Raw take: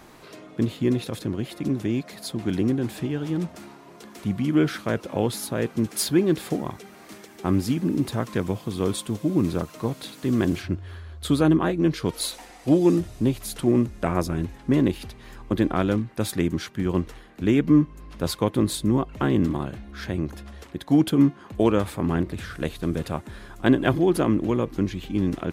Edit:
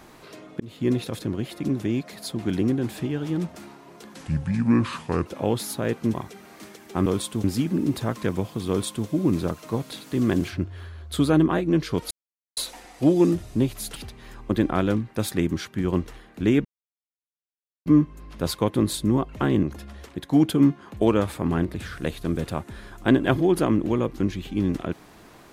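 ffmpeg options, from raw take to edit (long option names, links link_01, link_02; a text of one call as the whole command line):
ffmpeg -i in.wav -filter_complex "[0:a]asplit=11[link_01][link_02][link_03][link_04][link_05][link_06][link_07][link_08][link_09][link_10][link_11];[link_01]atrim=end=0.6,asetpts=PTS-STARTPTS,afade=type=out:start_time=0.596:duration=0.004:curve=hsin[link_12];[link_02]atrim=start=0.6:end=4.144,asetpts=PTS-STARTPTS,afade=type=in:duration=0.3[link_13];[link_03]atrim=start=4.14:end=4.99,asetpts=PTS-STARTPTS,asetrate=33516,aresample=44100,atrim=end_sample=49322,asetpts=PTS-STARTPTS[link_14];[link_04]atrim=start=4.986:end=5.872[link_15];[link_05]atrim=start=6.628:end=7.552[link_16];[link_06]atrim=start=8.798:end=9.182[link_17];[link_07]atrim=start=7.548:end=12.22,asetpts=PTS-STARTPTS,afade=type=out:start_time=4.668:duration=0.004:curve=hsin,apad=pad_dur=0.46[link_18];[link_08]atrim=start=12.22:end=13.612,asetpts=PTS-STARTPTS,afade=type=in:duration=0.004:curve=hsin[link_19];[link_09]atrim=start=14.968:end=17.66,asetpts=PTS-STARTPTS,afade=type=out:start_time=2.688:duration=0.004:curve=hsin,apad=pad_dur=1.21[link_20];[link_10]atrim=start=17.66:end=19.432,asetpts=PTS-STARTPTS,afade=type=in:duration=0.004:curve=hsin[link_21];[link_11]atrim=start=20.208[link_22];[link_12][link_13]concat=n=2:v=0:a=1[link_23];[link_23][link_14]acrossfade=duration=0.004:curve1=hsin:curve2=hsin[link_24];[link_24][link_15]acrossfade=duration=0.004:curve1=hsin:curve2=hsin[link_25];[link_25][link_16]acrossfade=duration=0.004:curve1=hsin:curve2=hsin[link_26];[link_26][link_17]acrossfade=duration=0.004:curve1=hsin:curve2=hsin[link_27];[link_18][link_19]concat=n=2:v=0:a=1[link_28];[link_27][link_28]acrossfade=duration=0.004:curve1=hsin:curve2=hsin[link_29];[link_20][link_21]concat=n=2:v=0:a=1[link_30];[link_29][link_30]acrossfade=duration=0.004:curve1=hsin:curve2=hsin[link_31];[link_31][link_22]acrossfade=duration=0.004:curve1=hsin:curve2=hsin" out.wav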